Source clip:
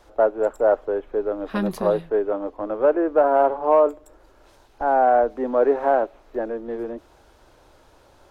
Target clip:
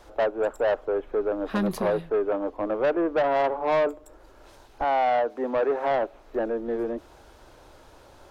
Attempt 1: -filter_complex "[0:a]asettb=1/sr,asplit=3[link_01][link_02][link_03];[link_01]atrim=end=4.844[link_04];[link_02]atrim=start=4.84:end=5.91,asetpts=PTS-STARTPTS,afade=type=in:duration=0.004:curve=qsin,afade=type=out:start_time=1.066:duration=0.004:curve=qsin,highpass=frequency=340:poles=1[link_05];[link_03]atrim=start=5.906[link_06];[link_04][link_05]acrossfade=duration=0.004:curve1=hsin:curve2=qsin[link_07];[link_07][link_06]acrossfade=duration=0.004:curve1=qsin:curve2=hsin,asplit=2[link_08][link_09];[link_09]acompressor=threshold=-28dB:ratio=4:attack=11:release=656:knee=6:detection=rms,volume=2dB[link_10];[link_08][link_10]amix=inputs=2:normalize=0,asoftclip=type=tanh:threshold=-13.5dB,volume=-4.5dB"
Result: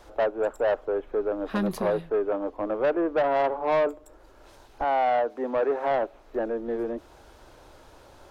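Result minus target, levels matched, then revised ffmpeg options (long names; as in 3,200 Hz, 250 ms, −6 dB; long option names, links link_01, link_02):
downward compressor: peak gain reduction +4.5 dB
-filter_complex "[0:a]asettb=1/sr,asplit=3[link_01][link_02][link_03];[link_01]atrim=end=4.844[link_04];[link_02]atrim=start=4.84:end=5.91,asetpts=PTS-STARTPTS,afade=type=in:duration=0.004:curve=qsin,afade=type=out:start_time=1.066:duration=0.004:curve=qsin,highpass=frequency=340:poles=1[link_05];[link_03]atrim=start=5.906[link_06];[link_04][link_05]acrossfade=duration=0.004:curve1=hsin:curve2=qsin[link_07];[link_07][link_06]acrossfade=duration=0.004:curve1=qsin:curve2=hsin,asplit=2[link_08][link_09];[link_09]acompressor=threshold=-22dB:ratio=4:attack=11:release=656:knee=6:detection=rms,volume=2dB[link_10];[link_08][link_10]amix=inputs=2:normalize=0,asoftclip=type=tanh:threshold=-13.5dB,volume=-4.5dB"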